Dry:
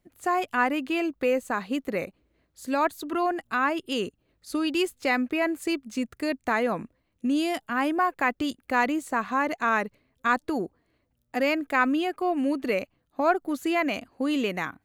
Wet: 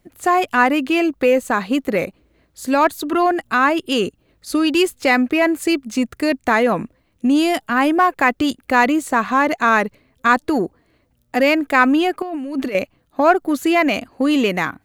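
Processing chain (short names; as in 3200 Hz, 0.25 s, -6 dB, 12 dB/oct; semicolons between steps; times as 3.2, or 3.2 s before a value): in parallel at -8.5 dB: soft clip -27.5 dBFS, distortion -8 dB; 12.22–12.75 on the sum: negative-ratio compressor -33 dBFS, ratio -1; gain +8 dB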